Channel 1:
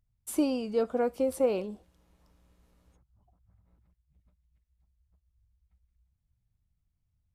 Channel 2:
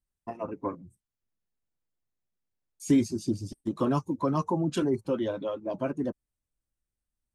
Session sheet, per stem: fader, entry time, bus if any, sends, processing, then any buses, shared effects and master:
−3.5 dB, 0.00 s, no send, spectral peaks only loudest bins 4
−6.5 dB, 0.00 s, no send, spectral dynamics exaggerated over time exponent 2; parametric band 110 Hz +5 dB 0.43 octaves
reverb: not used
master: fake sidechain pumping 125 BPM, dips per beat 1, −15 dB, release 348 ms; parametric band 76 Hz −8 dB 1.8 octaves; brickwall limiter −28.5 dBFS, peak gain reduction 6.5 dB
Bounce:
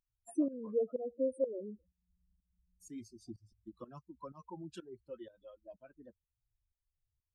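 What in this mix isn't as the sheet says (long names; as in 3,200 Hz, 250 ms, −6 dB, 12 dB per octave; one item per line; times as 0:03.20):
stem 2 −6.5 dB → −14.0 dB
master: missing brickwall limiter −28.5 dBFS, peak gain reduction 6.5 dB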